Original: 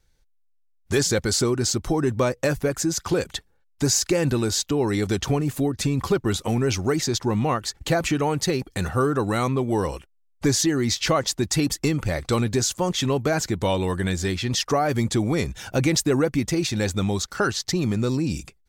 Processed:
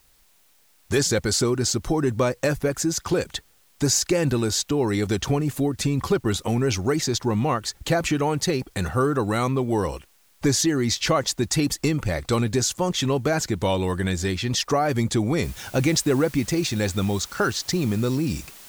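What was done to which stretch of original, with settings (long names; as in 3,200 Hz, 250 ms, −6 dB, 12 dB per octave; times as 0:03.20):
0:15.43: noise floor change −61 dB −45 dB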